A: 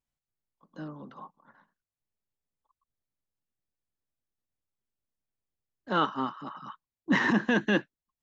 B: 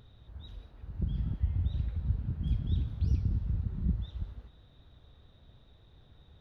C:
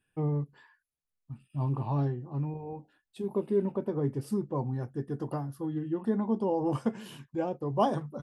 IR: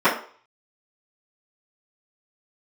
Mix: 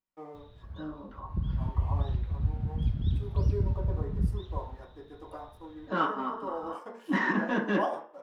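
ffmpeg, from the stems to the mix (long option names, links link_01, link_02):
-filter_complex "[0:a]asoftclip=type=tanh:threshold=-18.5dB,volume=-10dB,asplit=3[link_01][link_02][link_03];[link_02]volume=-13.5dB[link_04];[1:a]adelay=350,volume=2dB[link_05];[2:a]highpass=550,aeval=exprs='sgn(val(0))*max(abs(val(0))-0.00119,0)':channel_layout=same,volume=-9dB,asplit=2[link_06][link_07];[link_07]volume=-17dB[link_08];[link_03]apad=whole_len=297920[link_09];[link_05][link_09]sidechaincompress=threshold=-56dB:ratio=8:attack=48:release=390[link_10];[3:a]atrim=start_sample=2205[link_11];[link_04][link_08]amix=inputs=2:normalize=0[link_12];[link_12][link_11]afir=irnorm=-1:irlink=0[link_13];[link_01][link_10][link_06][link_13]amix=inputs=4:normalize=0"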